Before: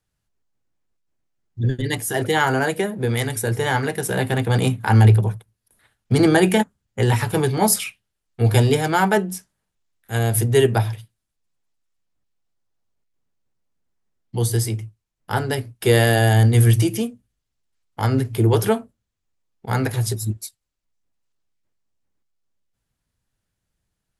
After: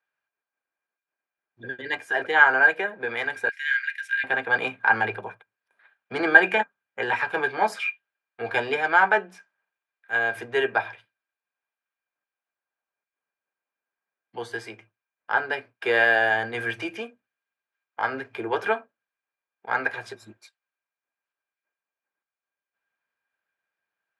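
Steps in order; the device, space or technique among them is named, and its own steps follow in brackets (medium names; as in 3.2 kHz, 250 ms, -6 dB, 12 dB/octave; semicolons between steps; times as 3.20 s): tin-can telephone (band-pass 700–2100 Hz; small resonant body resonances 1.6/2.4 kHz, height 16 dB, ringing for 65 ms); 3.49–4.24 s: steep high-pass 1.7 kHz 48 dB/octave; trim +1 dB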